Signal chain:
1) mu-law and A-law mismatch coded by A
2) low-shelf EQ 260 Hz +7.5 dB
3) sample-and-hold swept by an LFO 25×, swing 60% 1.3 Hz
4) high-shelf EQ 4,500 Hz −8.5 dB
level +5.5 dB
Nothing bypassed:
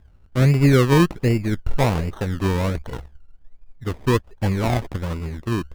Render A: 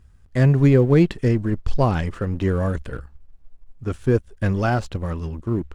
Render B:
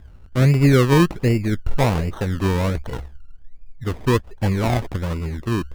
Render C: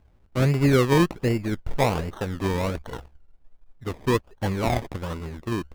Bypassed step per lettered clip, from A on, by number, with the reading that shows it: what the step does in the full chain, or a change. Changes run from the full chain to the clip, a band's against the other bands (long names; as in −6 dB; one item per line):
3, distortion level −4 dB
1, distortion level −22 dB
2, 125 Hz band −3.5 dB